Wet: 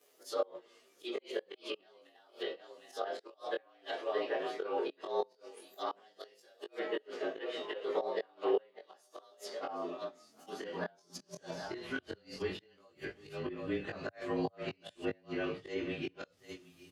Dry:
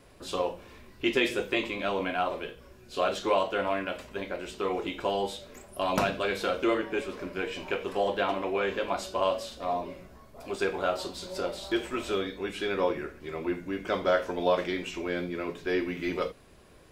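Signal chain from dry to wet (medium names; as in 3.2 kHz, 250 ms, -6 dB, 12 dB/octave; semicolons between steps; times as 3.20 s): frequency axis rescaled in octaves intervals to 109%; pre-emphasis filter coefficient 0.8; delay 759 ms -14.5 dB; gate -53 dBFS, range -14 dB; in parallel at -1 dB: compression 12:1, threshold -52 dBFS, peak gain reduction 18.5 dB; on the sum: slow attack 192 ms; inverted gate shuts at -33 dBFS, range -33 dB; high-pass sweep 420 Hz -> 100 Hz, 9.55–11.95 s; chorus 0.14 Hz, delay 19 ms, depth 4.3 ms; low-pass that closes with the level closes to 2.3 kHz, closed at -48.5 dBFS; trim +12.5 dB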